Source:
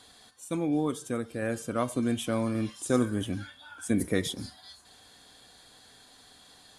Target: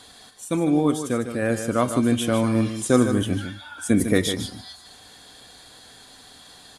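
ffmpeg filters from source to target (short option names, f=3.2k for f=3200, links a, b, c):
-af "aecho=1:1:152:0.355,volume=7.5dB"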